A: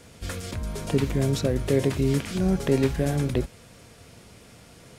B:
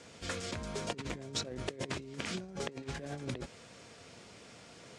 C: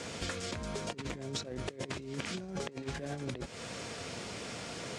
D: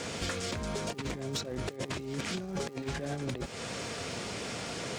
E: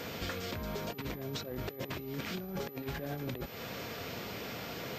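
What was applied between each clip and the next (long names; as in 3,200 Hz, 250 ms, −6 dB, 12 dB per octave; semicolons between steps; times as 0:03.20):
low-pass filter 8,000 Hz 24 dB per octave; compressor whose output falls as the input rises −28 dBFS, ratio −0.5; high-pass filter 270 Hz 6 dB per octave; level −6 dB
downward compressor 10 to 1, threshold −47 dBFS, peak gain reduction 16.5 dB; level +12 dB
sine wavefolder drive 9 dB, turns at −18.5 dBFS; hum with harmonics 400 Hz, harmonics 3, −49 dBFS −4 dB per octave; surface crackle 240 per second −40 dBFS; level −8.5 dB
switching amplifier with a slow clock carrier 12,000 Hz; level −3 dB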